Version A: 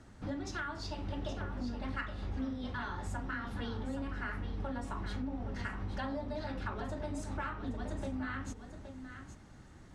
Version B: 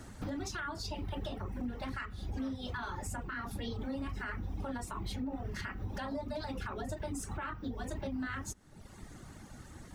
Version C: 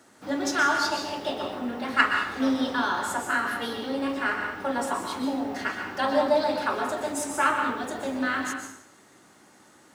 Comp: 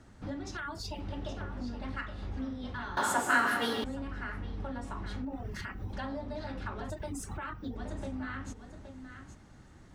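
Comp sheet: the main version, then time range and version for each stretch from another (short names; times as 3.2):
A
0.57–1 from B
2.97–3.84 from C
5.25–5.93 from B
6.9–7.76 from B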